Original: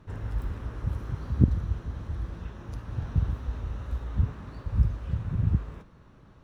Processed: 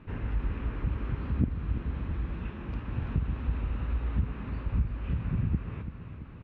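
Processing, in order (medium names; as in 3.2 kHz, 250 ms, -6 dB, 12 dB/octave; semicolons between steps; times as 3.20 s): fifteen-band graphic EQ 100 Hz -5 dB, 250 Hz +4 dB, 630 Hz -3 dB, 2.5 kHz +11 dB; compression 3:1, threshold -28 dBFS, peak gain reduction 12 dB; distance through air 350 m; feedback delay 336 ms, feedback 60%, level -11 dB; trim +3 dB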